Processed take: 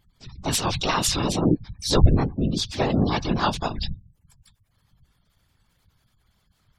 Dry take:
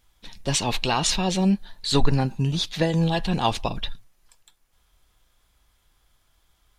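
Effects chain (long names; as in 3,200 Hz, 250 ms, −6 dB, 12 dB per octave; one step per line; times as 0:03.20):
pitch-shifted copies added +5 semitones −1 dB, +12 semitones −17 dB
gate on every frequency bin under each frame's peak −30 dB strong
random phases in short frames
level −2.5 dB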